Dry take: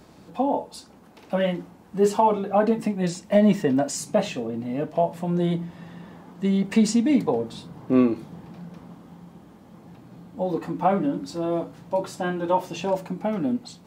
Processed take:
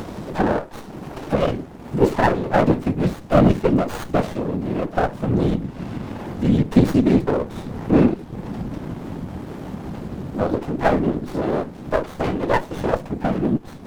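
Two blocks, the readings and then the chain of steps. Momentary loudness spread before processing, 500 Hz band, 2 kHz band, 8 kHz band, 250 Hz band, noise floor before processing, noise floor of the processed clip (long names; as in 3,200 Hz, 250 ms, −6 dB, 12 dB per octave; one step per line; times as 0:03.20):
20 LU, +3.0 dB, +7.0 dB, can't be measured, +3.5 dB, −50 dBFS, −38 dBFS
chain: random phases in short frames
upward compression, threshold −22 dBFS
windowed peak hold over 17 samples
level +4 dB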